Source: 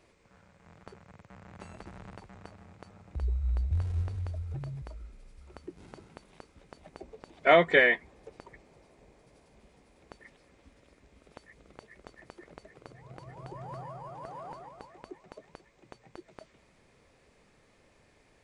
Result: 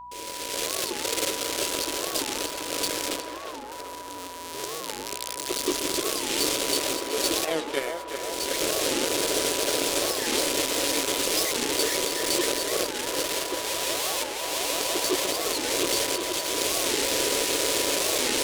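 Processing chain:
linear delta modulator 64 kbit/s, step −25.5 dBFS
camcorder AGC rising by 20 dB per second
Chebyshev high-pass filter 280 Hz, order 6
noise gate with hold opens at −20 dBFS
drawn EQ curve 570 Hz 0 dB, 960 Hz −25 dB, 3,200 Hz +1 dB
in parallel at 0 dB: brickwall limiter −20 dBFS, peak gain reduction 10.5 dB
on the sum: power curve on the samples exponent 2
mains hum 60 Hz, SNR 33 dB
on a send: feedback echo with a band-pass in the loop 370 ms, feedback 78%, band-pass 920 Hz, level −4 dB
on the sum: steady tone 980 Hz −39 dBFS
wow of a warped record 45 rpm, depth 250 cents

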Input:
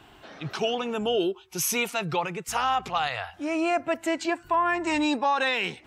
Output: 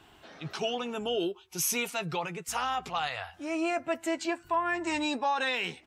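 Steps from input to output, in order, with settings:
parametric band 9,100 Hz +3.5 dB 2.2 octaves
double-tracking delay 12 ms −11 dB
level −5.5 dB

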